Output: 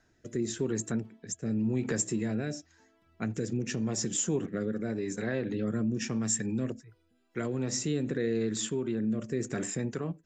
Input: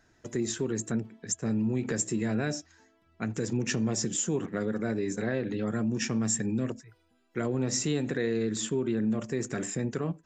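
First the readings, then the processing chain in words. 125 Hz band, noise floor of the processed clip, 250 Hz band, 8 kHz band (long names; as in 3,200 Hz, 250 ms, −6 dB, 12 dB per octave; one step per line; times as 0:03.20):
−1.5 dB, −69 dBFS, −1.5 dB, −1.5 dB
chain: rotating-speaker cabinet horn 0.9 Hz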